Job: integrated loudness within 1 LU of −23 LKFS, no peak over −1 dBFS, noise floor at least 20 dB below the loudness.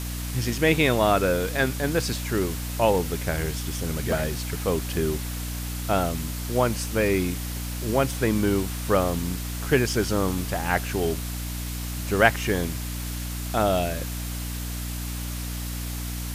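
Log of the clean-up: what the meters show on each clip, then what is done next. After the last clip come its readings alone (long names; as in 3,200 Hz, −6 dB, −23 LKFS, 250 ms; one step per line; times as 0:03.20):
mains hum 60 Hz; hum harmonics up to 300 Hz; level of the hum −29 dBFS; background noise floor −31 dBFS; target noise floor −46 dBFS; integrated loudness −25.5 LKFS; sample peak −2.0 dBFS; target loudness −23.0 LKFS
→ hum removal 60 Hz, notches 5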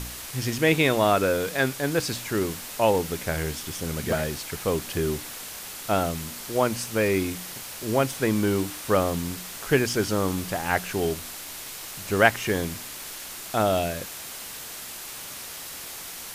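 mains hum none found; background noise floor −38 dBFS; target noise floor −47 dBFS
→ broadband denoise 9 dB, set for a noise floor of −38 dBFS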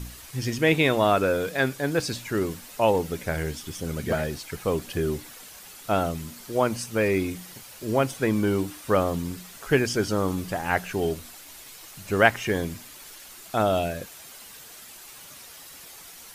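background noise floor −45 dBFS; target noise floor −46 dBFS
→ broadband denoise 6 dB, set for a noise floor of −45 dBFS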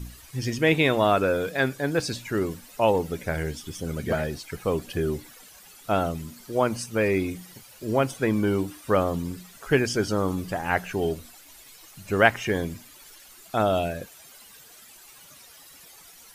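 background noise floor −50 dBFS; integrated loudness −26.0 LKFS; sample peak −2.0 dBFS; target loudness −23.0 LKFS
→ level +3 dB
brickwall limiter −1 dBFS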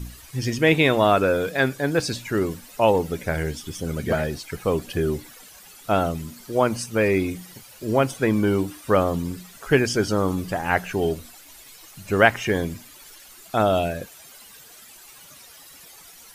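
integrated loudness −23.0 LKFS; sample peak −1.0 dBFS; background noise floor −47 dBFS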